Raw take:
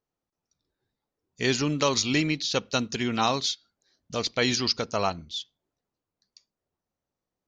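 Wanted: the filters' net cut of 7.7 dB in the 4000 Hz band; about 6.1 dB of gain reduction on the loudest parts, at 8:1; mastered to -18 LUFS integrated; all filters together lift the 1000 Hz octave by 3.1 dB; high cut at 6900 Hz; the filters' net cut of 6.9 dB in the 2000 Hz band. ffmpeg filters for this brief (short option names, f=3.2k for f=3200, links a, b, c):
-af "lowpass=6.9k,equalizer=f=1k:t=o:g=6.5,equalizer=f=2k:t=o:g=-8.5,equalizer=f=4k:t=o:g=-7,acompressor=threshold=-24dB:ratio=8,volume=13dB"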